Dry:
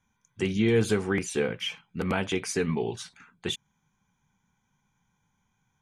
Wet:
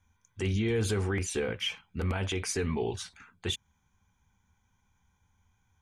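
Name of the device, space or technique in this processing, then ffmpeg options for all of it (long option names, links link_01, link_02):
car stereo with a boomy subwoofer: -af "lowshelf=frequency=110:width_type=q:width=3:gain=7,alimiter=limit=-21dB:level=0:latency=1:release=32"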